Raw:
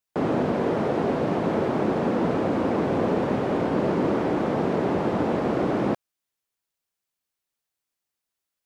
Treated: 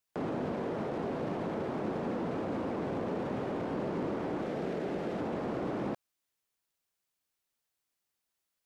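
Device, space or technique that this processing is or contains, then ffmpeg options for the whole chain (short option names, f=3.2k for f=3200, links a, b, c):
de-esser from a sidechain: -filter_complex "[0:a]asettb=1/sr,asplit=3[a][b][c];[a]atrim=end=4.424[d];[b]atrim=start=4.42:end=5.21,asetpts=PTS-STARTPTS,afade=t=in:d=0.004:c=qsin,afade=t=out:st=0.786:d=0.004:c=qsin,equalizer=f=100:t=o:w=0.67:g=-11,equalizer=f=250:t=o:w=0.67:g=-3,equalizer=f=1k:t=o:w=0.67:g=-8[e];[c]atrim=start=5.206[f];[d][e]acrossfade=d=0.004:c1=hsin:c2=qsin[g];[g][f]acrossfade=d=0.004:c1=qsin:c2=hsin,asplit=2[h][i];[i]highpass=f=4.9k:p=1,apad=whole_len=381817[j];[h][j]sidechaincompress=threshold=-51dB:ratio=12:attack=3.8:release=30"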